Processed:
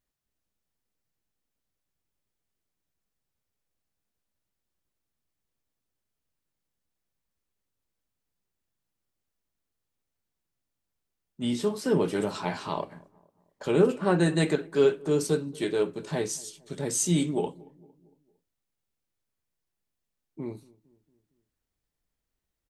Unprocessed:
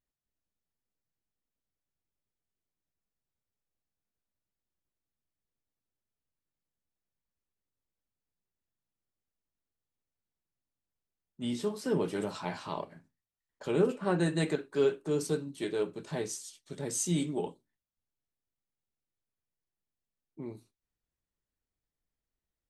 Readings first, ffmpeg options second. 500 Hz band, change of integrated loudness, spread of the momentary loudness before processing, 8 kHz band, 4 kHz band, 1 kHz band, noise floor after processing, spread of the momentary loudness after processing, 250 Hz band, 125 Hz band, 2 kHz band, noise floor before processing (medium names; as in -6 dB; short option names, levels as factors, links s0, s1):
+5.5 dB, +5.5 dB, 14 LU, +5.5 dB, +5.5 dB, +5.5 dB, -84 dBFS, 14 LU, +5.5 dB, +5.5 dB, +5.5 dB, under -85 dBFS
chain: -filter_complex "[0:a]asplit=2[s0][s1];[s1]adelay=228,lowpass=f=1000:p=1,volume=0.0708,asplit=2[s2][s3];[s3]adelay=228,lowpass=f=1000:p=1,volume=0.54,asplit=2[s4][s5];[s5]adelay=228,lowpass=f=1000:p=1,volume=0.54,asplit=2[s6][s7];[s7]adelay=228,lowpass=f=1000:p=1,volume=0.54[s8];[s0][s2][s4][s6][s8]amix=inputs=5:normalize=0,volume=1.88"